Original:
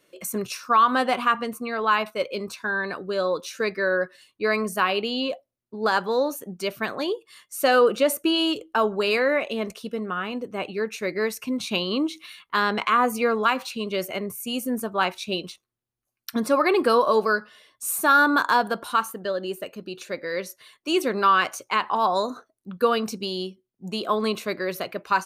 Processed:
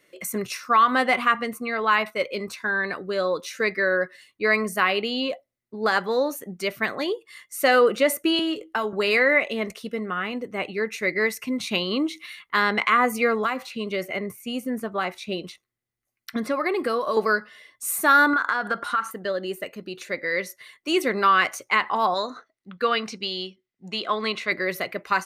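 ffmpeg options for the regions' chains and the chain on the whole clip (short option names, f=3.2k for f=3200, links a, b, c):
-filter_complex "[0:a]asettb=1/sr,asplit=3[a][b][c];[a]atrim=end=8.394[d];[b]atrim=start=8.39:end=8.93,asetpts=PTS-STARTPTS,afade=t=in:d=0.004:c=qsin,afade=t=out:st=0.536:d=0.004:c=qsin,asplit=2[e][f];[f]adelay=19,volume=-9dB[g];[e][g]amix=inputs=2:normalize=0,atrim=end_sample=23814,acrossover=split=240|2400[h][i][j];[h]acompressor=threshold=-42dB:ratio=4[k];[i]acompressor=threshold=-24dB:ratio=4[l];[j]acompressor=threshold=-37dB:ratio=4[m];[k][l][m]amix=inputs=3:normalize=0[n];[c]atrim=start=8.926[o];[d][n]acrossfade=d=0.004:c1=hsin:c2=qsin[p];[p][o]acrossfade=d=0.004:c1=qsin:c2=hsin,asettb=1/sr,asplit=3[q][r][s];[q]atrim=end=13.444[t];[r]atrim=start=13.44:end=17.17,asetpts=PTS-STARTPTS,afade=t=in:d=0.004:c=qsin,afade=t=out:st=3.726:d=0.004:c=qsin,bandreject=f=920:w=18,acrossover=split=1400|4500[u][v][w];[u]acompressor=threshold=-23dB:ratio=4[x];[v]acompressor=threshold=-37dB:ratio=4[y];[w]acompressor=threshold=-47dB:ratio=4[z];[x][y][z]amix=inputs=3:normalize=0[aa];[s]atrim=start=17.166[ab];[t][aa]acrossfade=d=0.004:c1=hsin:c2=qsin[ac];[ac][ab]acrossfade=d=0.004:c1=qsin:c2=hsin,asettb=1/sr,asplit=3[ad][ae][af];[ad]atrim=end=18.334[ag];[ae]atrim=start=18.33:end=19.11,asetpts=PTS-STARTPTS,afade=t=in:d=0.004:c=qsin,afade=t=out:st=0.776:d=0.004:c=qsin,lowpass=8.3k,equalizer=f=1.4k:w=2.7:g=12,acompressor=threshold=-20dB:ratio=6:attack=3.2:release=140:knee=1:detection=peak[ah];[af]atrim=start=19.106[ai];[ag][ah]acrossfade=d=0.004:c1=hsin:c2=qsin[aj];[aj][ai]acrossfade=d=0.004:c1=qsin:c2=hsin,asettb=1/sr,asplit=3[ak][al][am];[ak]atrim=end=22.144[an];[al]atrim=start=22.14:end=24.52,asetpts=PTS-STARTPTS,afade=t=in:d=0.004:c=qsin,afade=t=out:st=2.376:d=0.004:c=qsin,lowpass=4.1k,tiltshelf=f=1.1k:g=-6[ao];[am]atrim=start=24.516[ap];[an][ao]acrossfade=d=0.004:c1=hsin:c2=qsin[aq];[aq][ap]acrossfade=d=0.004:c1=qsin:c2=hsin,equalizer=f=2k:t=o:w=0.22:g=13,bandreject=f=950:w=19"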